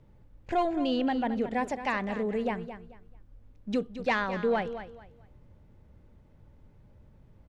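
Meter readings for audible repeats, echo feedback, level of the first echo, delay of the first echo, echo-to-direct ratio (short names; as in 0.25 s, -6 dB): 2, 25%, -11.5 dB, 0.219 s, -11.0 dB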